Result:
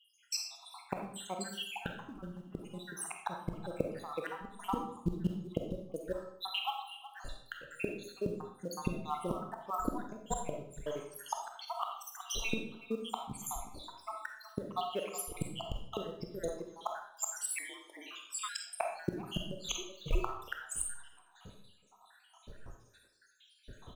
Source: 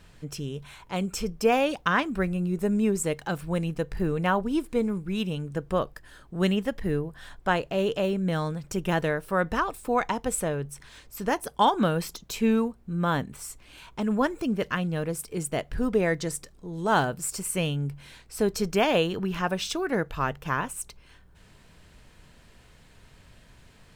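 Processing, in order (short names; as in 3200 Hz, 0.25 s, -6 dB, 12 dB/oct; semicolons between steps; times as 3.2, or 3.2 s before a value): random spectral dropouts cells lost 83%; speakerphone echo 0.37 s, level -14 dB; spectral noise reduction 10 dB; high shelf 12000 Hz -9.5 dB; in parallel at -9 dB: short-mantissa float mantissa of 2-bit; on the sum: flipped gate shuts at -25 dBFS, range -24 dB; bell 2000 Hz -11.5 dB 0.49 oct; reverb RT60 0.65 s, pre-delay 5 ms, DRR 2 dB; 17.58–18.49 frequency shift -380 Hz; gain +5 dB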